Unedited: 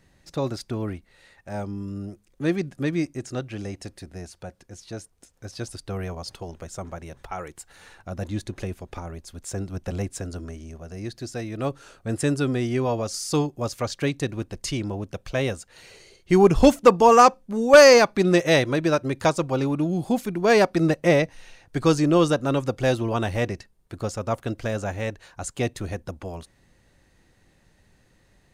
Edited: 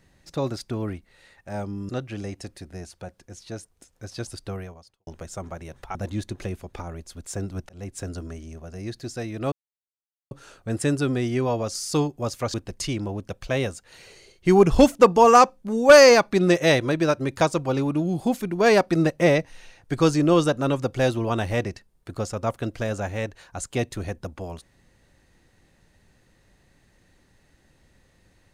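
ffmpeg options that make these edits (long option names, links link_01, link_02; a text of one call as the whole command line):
ffmpeg -i in.wav -filter_complex "[0:a]asplit=7[link_01][link_02][link_03][link_04][link_05][link_06][link_07];[link_01]atrim=end=1.892[link_08];[link_02]atrim=start=3.298:end=6.48,asetpts=PTS-STARTPTS,afade=type=out:start_time=2.582:duration=0.6:curve=qua[link_09];[link_03]atrim=start=6.48:end=7.362,asetpts=PTS-STARTPTS,afade=type=in:duration=0.004:curve=hsin[link_10];[link_04]atrim=start=8.128:end=9.87,asetpts=PTS-STARTPTS,afade=type=out:start_time=1.738:duration=0.004:curve=hsin[link_11];[link_05]atrim=start=9.87:end=11.7,asetpts=PTS-STARTPTS,afade=type=in:duration=0.36,afade=type=out:start_time=1.826:duration=0.004:curve=hsin,apad=pad_dur=0.79[link_12];[link_06]atrim=start=11.7:end=13.932,asetpts=PTS-STARTPTS,afade=type=in:duration=0.004:curve=hsin[link_13];[link_07]atrim=start=14.378[link_14];[link_09][link_10]concat=n=2:v=0:a=1[link_15];[link_08][link_15]acrossfade=duration=0.004:curve1=hsin:curve2=hsin[link_16];[link_11][link_12][link_13]concat=n=3:v=0:a=1[link_17];[link_16][link_17]acrossfade=duration=0.004:curve1=hsin:curve2=hsin[link_18];[link_18][link_14]acrossfade=duration=0.004:curve1=hsin:curve2=hsin" out.wav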